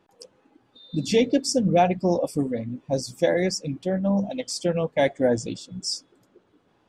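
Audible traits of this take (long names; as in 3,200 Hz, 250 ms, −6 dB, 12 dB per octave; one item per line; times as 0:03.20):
background noise floor −65 dBFS
spectral slope −5.0 dB per octave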